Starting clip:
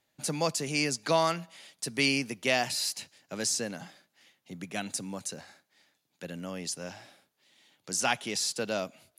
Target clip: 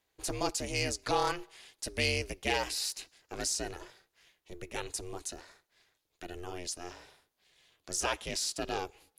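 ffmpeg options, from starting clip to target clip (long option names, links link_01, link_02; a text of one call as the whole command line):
ffmpeg -i in.wav -af "aeval=exprs='val(0)*sin(2*PI*180*n/s)':channel_layout=same,asoftclip=type=tanh:threshold=-16dB" out.wav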